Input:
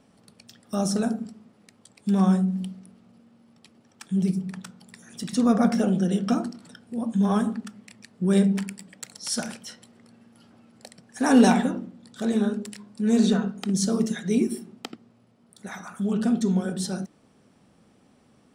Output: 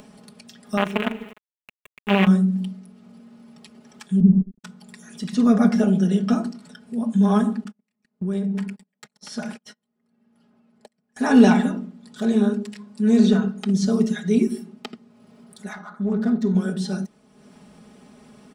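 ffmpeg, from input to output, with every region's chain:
-filter_complex "[0:a]asettb=1/sr,asplit=3[a][b][c];[a]atrim=end=0.774[d];[b]atrim=start=0.77:end=2.27,asetpts=PTS-STARTPTS,afade=t=in:d=0.004:c=qsin,afade=t=out:st=1.496:d=0.004:c=qsin,acrusher=bits=4:dc=4:mix=0:aa=0.000001,highpass=f=230:p=1,highshelf=f=3.7k:t=q:w=3:g=-11[e];[c]atrim=start=2.266[f];[d][e]acrossfade=d=0.004:c1=hsin:c2=qsin[g];[g][f]acrossfade=d=0.004:c1=qsin:c2=hsin,asettb=1/sr,asplit=3[h][i][j];[h]atrim=end=4.204[k];[i]atrim=start=4.2:end=4.64,asetpts=PTS-STARTPTS,afade=t=in:d=0.004:c=qsin,afade=t=out:st=0.436:d=0.004:c=qsin,agate=range=-23dB:threshold=-31dB:ratio=16:release=100:detection=peak,acrusher=bits=6:dc=4:mix=0:aa=0.000001,lowpass=f=240:t=q:w=2.3[l];[j]atrim=start=4.636[m];[k][l]acrossfade=d=0.004:c1=hsin:c2=qsin[n];[n][m]acrossfade=d=0.004:c1=qsin:c2=hsin,asettb=1/sr,asplit=3[o][p][q];[o]atrim=end=7.644[r];[p]atrim=start=7.64:end=11.19,asetpts=PTS-STARTPTS,afade=t=in:d=0.004:c=qsin,afade=t=out:st=3.546:d=0.004:c=qsin,agate=range=-34dB:threshold=-42dB:ratio=16:release=100:detection=peak,highshelf=f=3.2k:g=-9,acompressor=threshold=-26dB:ratio=6:attack=3.2:release=140:knee=1:detection=peak[s];[q]atrim=start=11.186[t];[r][s]acrossfade=d=0.004:c1=hsin:c2=qsin[u];[u][t]acrossfade=d=0.004:c1=qsin:c2=hsin,asettb=1/sr,asplit=3[v][w][x];[v]atrim=end=15.734[y];[w]atrim=start=15.73:end=16.55,asetpts=PTS-STARTPTS,afade=t=in:d=0.004:c=qsin,afade=t=out:st=0.816:d=0.004:c=qsin,asuperstop=centerf=2800:order=20:qfactor=2.3,lowshelf=f=110:g=-11.5,adynamicsmooth=sensitivity=6:basefreq=1.5k[z];[x]atrim=start=16.546[aa];[y][z]acrossfade=d=0.004:c1=hsin:c2=qsin[ab];[ab][aa]acrossfade=d=0.004:c1=qsin:c2=hsin,acrossover=split=5400[ac][ad];[ad]acompressor=threshold=-48dB:ratio=4:attack=1:release=60[ae];[ac][ae]amix=inputs=2:normalize=0,aecho=1:1:4.8:0.74,acompressor=mode=upward:threshold=-39dB:ratio=2.5"

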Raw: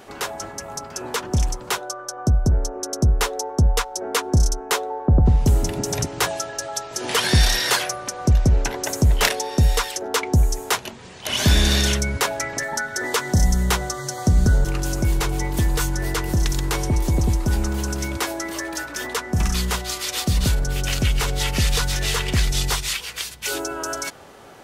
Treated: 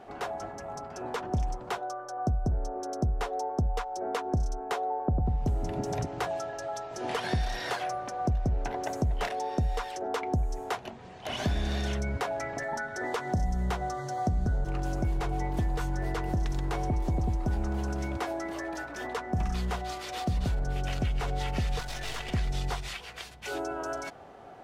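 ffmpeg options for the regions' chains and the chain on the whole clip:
-filter_complex "[0:a]asettb=1/sr,asplit=3[a][b][c];[a]atrim=end=21.794[d];[b]atrim=start=21.79:end=22.34,asetpts=PTS-STARTPTS,afade=t=in:d=0.004:c=qsin,afade=t=out:st=0.546:d=0.004:c=qsin,tiltshelf=f=1.3k:g=-6.5,aeval=exprs='clip(val(0),-1,0.0355)':c=same[e];[c]atrim=start=22.336[f];[d][e]acrossfade=d=0.004:c1=hsin:c2=qsin[g];[g][f]acrossfade=d=0.004:c1=qsin:c2=hsin,equalizer=f=720:t=o:w=0.24:g=10,acompressor=threshold=-19dB:ratio=6,lowpass=f=1.5k:p=1,volume=-5.5dB"

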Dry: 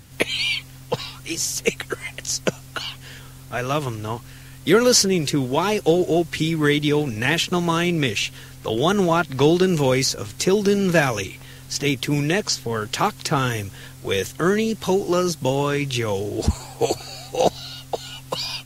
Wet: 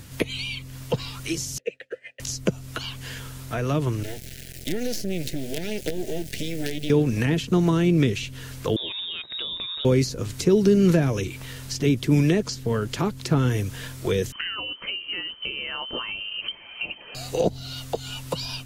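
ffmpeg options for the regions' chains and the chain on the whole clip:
-filter_complex "[0:a]asettb=1/sr,asplit=3[a][b][c];[a]atrim=end=1.584[d];[b]atrim=start=1.58:end=2.2,asetpts=PTS-STARTPTS,afade=t=in:d=0.004:c=qsin,afade=t=out:st=0.616:d=0.004:c=qsin,agate=range=-33dB:threshold=-30dB:ratio=3:release=100:detection=peak,asplit=3[e][f][g];[e]bandpass=f=530:t=q:w=8,volume=0dB[h];[f]bandpass=f=1.84k:t=q:w=8,volume=-6dB[i];[g]bandpass=f=2.48k:t=q:w=8,volume=-9dB[j];[h][i][j]amix=inputs=3:normalize=0[k];[c]atrim=start=2.196[l];[d][k]acrossfade=d=0.004:c1=hsin:c2=qsin[m];[m][l]acrossfade=d=0.004:c1=qsin:c2=hsin,asettb=1/sr,asplit=3[n][o][p];[n]atrim=end=4.034[q];[o]atrim=start=4.03:end=6.9,asetpts=PTS-STARTPTS,afade=t=in:d=0.004:c=qsin,afade=t=out:st=2.866:d=0.004:c=qsin,acompressor=threshold=-25dB:ratio=3:attack=3.2:release=140:knee=1:detection=peak,acrusher=bits=4:dc=4:mix=0:aa=0.000001,asuperstop=centerf=1100:order=4:qfactor=1[r];[p]atrim=start=6.896[s];[q][r]acrossfade=d=0.004:c1=hsin:c2=qsin[t];[t][s]acrossfade=d=0.004:c1=qsin:c2=hsin,asettb=1/sr,asplit=3[u][v][w];[u]atrim=end=8.764[x];[v]atrim=start=8.76:end=9.85,asetpts=PTS-STARTPTS,afade=t=in:d=0.004:c=qsin,afade=t=out:st=1.086:d=0.004:c=qsin,lowpass=f=3.3k:t=q:w=0.5098,lowpass=f=3.3k:t=q:w=0.6013,lowpass=f=3.3k:t=q:w=0.9,lowpass=f=3.3k:t=q:w=2.563,afreqshift=-3900,acompressor=threshold=-22dB:ratio=2:attack=3.2:release=140:knee=1:detection=peak[y];[w]atrim=start=9.846[z];[x][y]acrossfade=d=0.004:c1=hsin:c2=qsin[aa];[aa][z]acrossfade=d=0.004:c1=qsin:c2=hsin,asettb=1/sr,asplit=3[ab][ac][ad];[ab]atrim=end=14.324[ae];[ac]atrim=start=14.32:end=17.15,asetpts=PTS-STARTPTS,afade=t=in:d=0.004:c=qsin,afade=t=out:st=2.826:d=0.004:c=qsin,equalizer=f=2k:w=3.4:g=7.5,lowpass=f=2.7k:t=q:w=0.5098,lowpass=f=2.7k:t=q:w=0.6013,lowpass=f=2.7k:t=q:w=0.9,lowpass=f=2.7k:t=q:w=2.563,afreqshift=-3200[af];[ad]atrim=start=17.146[ag];[ae][af]acrossfade=d=0.004:c1=hsin:c2=qsin[ah];[ah][ag]acrossfade=d=0.004:c1=qsin:c2=hsin,bandreject=f=790:w=12,acrossover=split=440[ai][aj];[aj]acompressor=threshold=-34dB:ratio=6[ak];[ai][ak]amix=inputs=2:normalize=0,alimiter=level_in=11dB:limit=-1dB:release=50:level=0:latency=1,volume=-7.5dB"

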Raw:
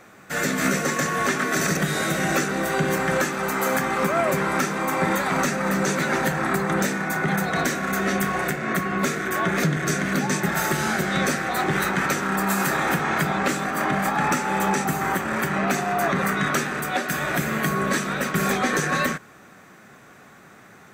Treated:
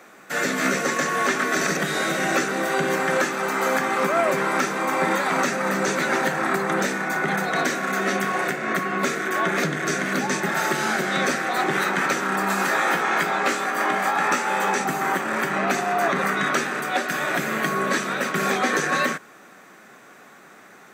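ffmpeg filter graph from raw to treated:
-filter_complex "[0:a]asettb=1/sr,asplit=3[a][b][c];[a]atrim=end=12.674[d];[b]atrim=start=12.67:end=14.8,asetpts=PTS-STARTPTS,afade=t=in:d=0.004:c=qsin,afade=t=out:st=2.126:d=0.004:c=qsin,lowshelf=f=170:g=-10.5,asplit=2[e][f];[f]adelay=17,volume=-6dB[g];[e][g]amix=inputs=2:normalize=0,atrim=end_sample=93933[h];[c]atrim=start=14.796[i];[d][h]acrossfade=d=0.004:c1=hsin:c2=qsin[j];[j][i]acrossfade=d=0.004:c1=qsin:c2=hsin,acrossover=split=6700[k][l];[l]acompressor=threshold=-40dB:ratio=4:attack=1:release=60[m];[k][m]amix=inputs=2:normalize=0,highpass=250,volume=1.5dB"

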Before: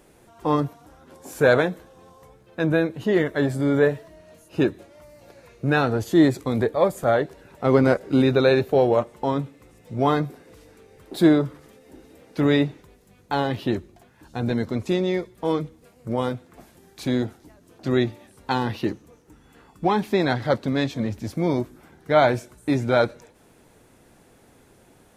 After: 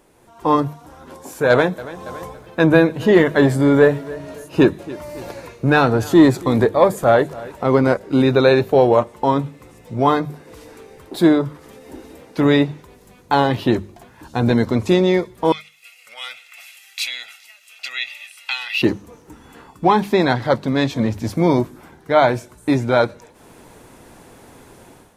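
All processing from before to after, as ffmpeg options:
-filter_complex "[0:a]asettb=1/sr,asplit=3[a][b][c];[a]atrim=end=1.504[d];[b]atrim=start=1.5:end=7.64,asetpts=PTS-STARTPTS,afade=t=in:d=0.004:c=qsin,afade=t=out:st=6.136:d=0.004:c=qsin,acontrast=42,aecho=1:1:281|562|843:0.0944|0.0312|0.0103,atrim=end_sample=270774[e];[c]atrim=start=7.636[f];[d][e]acrossfade=d=0.004:c1=hsin:c2=qsin[g];[g][f]acrossfade=d=0.004:c1=qsin:c2=hsin,asettb=1/sr,asplit=3[h][i][j];[h]atrim=end=15.524[k];[i]atrim=start=15.52:end=18.82,asetpts=PTS-STARTPTS,afade=t=in:d=0.004:c=qsin,afade=t=out:st=3.296:d=0.004:c=qsin,aecho=1:1:1.5:0.66,atrim=end_sample=145530,acompressor=threshold=-26dB:ratio=5:attack=3.2:release=140:knee=1:detection=peak,highpass=f=2.5k:t=q:w=5.2[l];[j]atrim=start=18.816[m];[k][l]acrossfade=d=0.004:c1=hsin:c2=qsin[n];[n][m]acrossfade=d=0.004:c1=qsin:c2=hsin,equalizer=f=980:t=o:w=0.39:g=5,dynaudnorm=f=110:g=5:m=11dB,bandreject=f=50:t=h:w=6,bandreject=f=100:t=h:w=6,bandreject=f=150:t=h:w=6,bandreject=f=200:t=h:w=6,volume=-1dB"

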